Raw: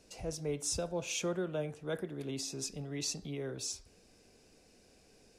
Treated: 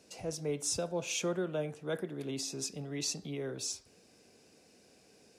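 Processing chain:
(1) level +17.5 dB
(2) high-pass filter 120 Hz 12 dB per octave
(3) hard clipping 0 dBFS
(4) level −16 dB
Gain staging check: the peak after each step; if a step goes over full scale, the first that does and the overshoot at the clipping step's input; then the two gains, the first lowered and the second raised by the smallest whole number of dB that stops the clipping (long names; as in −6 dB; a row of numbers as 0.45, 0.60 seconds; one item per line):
−3.5, −3.5, −3.5, −19.5 dBFS
no step passes full scale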